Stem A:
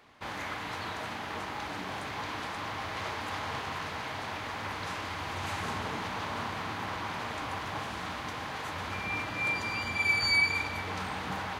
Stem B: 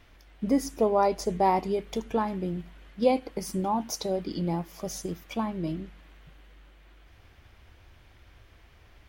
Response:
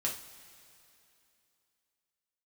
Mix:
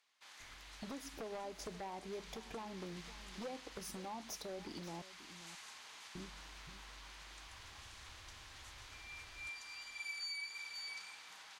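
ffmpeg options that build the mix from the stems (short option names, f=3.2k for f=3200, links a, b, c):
-filter_complex "[0:a]bandpass=f=7.3k:t=q:w=0.93:csg=0,volume=-7dB,asplit=2[a][b];[b]volume=-7.5dB[c];[1:a]acompressor=threshold=-32dB:ratio=12,aeval=exprs='0.0335*(abs(mod(val(0)/0.0335+3,4)-2)-1)':c=same,adelay=400,volume=-5.5dB,asplit=3[d][e][f];[d]atrim=end=5.02,asetpts=PTS-STARTPTS,afade=t=out:st=5.016:d=0.004:c=hsin[g];[e]atrim=start=5.02:end=6.15,asetpts=PTS-STARTPTS,volume=0[h];[f]atrim=start=6.15,asetpts=PTS-STARTPTS,afade=t=in:d=0.004:c=hsin[i];[g][h][i]concat=n=3:v=0:a=1,asplit=2[j][k];[k]volume=-18.5dB[l];[c][l]amix=inputs=2:normalize=0,aecho=0:1:533:1[m];[a][j][m]amix=inputs=3:normalize=0,acrossover=split=370[n][o];[n]acompressor=threshold=-48dB:ratio=6[p];[p][o]amix=inputs=2:normalize=0,alimiter=level_in=12dB:limit=-24dB:level=0:latency=1:release=256,volume=-12dB"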